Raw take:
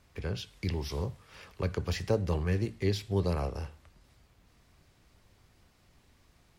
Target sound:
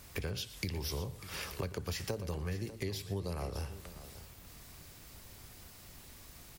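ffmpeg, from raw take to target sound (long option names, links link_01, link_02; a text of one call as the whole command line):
ffmpeg -i in.wav -filter_complex "[0:a]aemphasis=mode=production:type=50fm,acompressor=threshold=-43dB:ratio=8,asplit=2[link_01][link_02];[link_02]aecho=0:1:118|596:0.158|0.188[link_03];[link_01][link_03]amix=inputs=2:normalize=0,volume=8dB" out.wav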